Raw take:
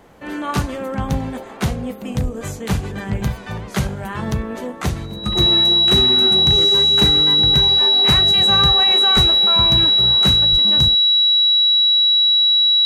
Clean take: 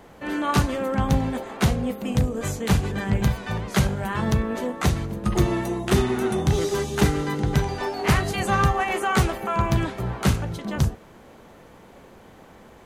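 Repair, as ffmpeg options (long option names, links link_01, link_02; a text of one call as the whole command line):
ffmpeg -i in.wav -filter_complex "[0:a]bandreject=frequency=3900:width=30,asplit=3[link_01][link_02][link_03];[link_01]afade=type=out:start_time=2.23:duration=0.02[link_04];[link_02]highpass=frequency=140:width=0.5412,highpass=frequency=140:width=1.3066,afade=type=in:start_time=2.23:duration=0.02,afade=type=out:start_time=2.35:duration=0.02[link_05];[link_03]afade=type=in:start_time=2.35:duration=0.02[link_06];[link_04][link_05][link_06]amix=inputs=3:normalize=0,asplit=3[link_07][link_08][link_09];[link_07]afade=type=out:start_time=9.15:duration=0.02[link_10];[link_08]highpass=frequency=140:width=0.5412,highpass=frequency=140:width=1.3066,afade=type=in:start_time=9.15:duration=0.02,afade=type=out:start_time=9.27:duration=0.02[link_11];[link_09]afade=type=in:start_time=9.27:duration=0.02[link_12];[link_10][link_11][link_12]amix=inputs=3:normalize=0,asplit=3[link_13][link_14][link_15];[link_13]afade=type=out:start_time=10.51:duration=0.02[link_16];[link_14]highpass=frequency=140:width=0.5412,highpass=frequency=140:width=1.3066,afade=type=in:start_time=10.51:duration=0.02,afade=type=out:start_time=10.63:duration=0.02[link_17];[link_15]afade=type=in:start_time=10.63:duration=0.02[link_18];[link_16][link_17][link_18]amix=inputs=3:normalize=0" out.wav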